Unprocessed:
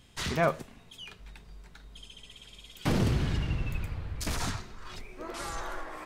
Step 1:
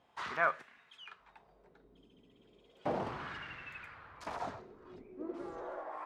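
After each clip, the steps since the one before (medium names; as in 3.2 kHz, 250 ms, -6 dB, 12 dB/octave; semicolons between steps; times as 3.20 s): wah-wah 0.34 Hz 300–1700 Hz, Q 2.3; trim +3.5 dB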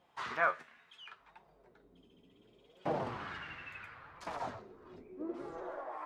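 flange 0.71 Hz, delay 5.2 ms, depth 7.9 ms, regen +51%; trim +4 dB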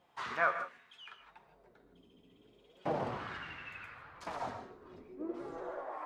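gated-style reverb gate 180 ms rising, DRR 8.5 dB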